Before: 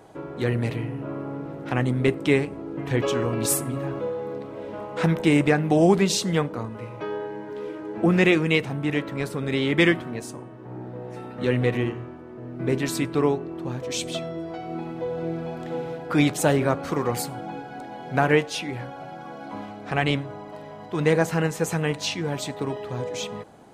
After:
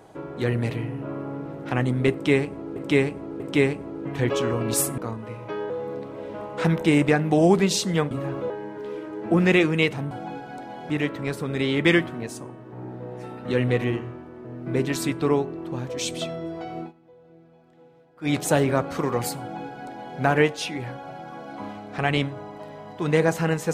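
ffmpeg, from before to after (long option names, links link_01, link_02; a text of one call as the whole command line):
ffmpeg -i in.wav -filter_complex "[0:a]asplit=11[link_01][link_02][link_03][link_04][link_05][link_06][link_07][link_08][link_09][link_10][link_11];[link_01]atrim=end=2.762[link_12];[link_02]atrim=start=2.118:end=2.762[link_13];[link_03]atrim=start=2.118:end=3.702[link_14];[link_04]atrim=start=6.498:end=7.222[link_15];[link_05]atrim=start=4.088:end=6.502[link_16];[link_06]atrim=start=3.698:end=4.092[link_17];[link_07]atrim=start=7.218:end=8.832[link_18];[link_08]atrim=start=17.328:end=18.122[link_19];[link_09]atrim=start=8.828:end=14.86,asetpts=PTS-STARTPTS,afade=type=out:start_time=5.882:duration=0.15:silence=0.0707946[link_20];[link_10]atrim=start=14.86:end=16.14,asetpts=PTS-STARTPTS,volume=-23dB[link_21];[link_11]atrim=start=16.14,asetpts=PTS-STARTPTS,afade=type=in:duration=0.15:silence=0.0707946[link_22];[link_12][link_13]acrossfade=duration=0.004:curve1=hsin:curve2=hsin[link_23];[link_23][link_14]acrossfade=duration=0.004:curve1=hsin:curve2=hsin[link_24];[link_24][link_15]acrossfade=duration=0.004:curve1=hsin:curve2=hsin[link_25];[link_25][link_16]acrossfade=duration=0.004:curve1=hsin:curve2=hsin[link_26];[link_26][link_17]acrossfade=duration=0.004:curve1=hsin:curve2=hsin[link_27];[link_27][link_18]acrossfade=duration=0.004:curve1=hsin:curve2=hsin[link_28];[link_28][link_19]acrossfade=duration=0.004:curve1=hsin:curve2=hsin[link_29];[link_20][link_21][link_22]concat=n=3:v=0:a=1[link_30];[link_29][link_30]acrossfade=duration=0.004:curve1=hsin:curve2=hsin" out.wav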